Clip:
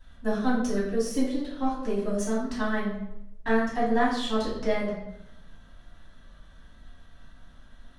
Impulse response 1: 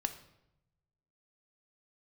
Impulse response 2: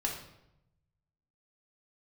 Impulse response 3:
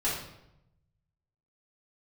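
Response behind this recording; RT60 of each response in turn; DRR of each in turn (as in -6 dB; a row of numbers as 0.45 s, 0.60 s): 3; 0.85 s, 0.85 s, 0.85 s; 8.0 dB, -1.0 dB, -9.0 dB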